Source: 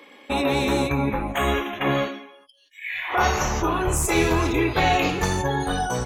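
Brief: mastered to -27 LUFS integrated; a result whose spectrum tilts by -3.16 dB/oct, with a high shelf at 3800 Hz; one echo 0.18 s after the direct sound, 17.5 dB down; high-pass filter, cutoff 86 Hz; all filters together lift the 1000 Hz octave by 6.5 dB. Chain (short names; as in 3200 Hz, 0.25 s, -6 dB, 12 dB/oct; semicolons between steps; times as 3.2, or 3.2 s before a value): HPF 86 Hz; bell 1000 Hz +8 dB; high shelf 3800 Hz +9 dB; echo 0.18 s -17.5 dB; gain -8 dB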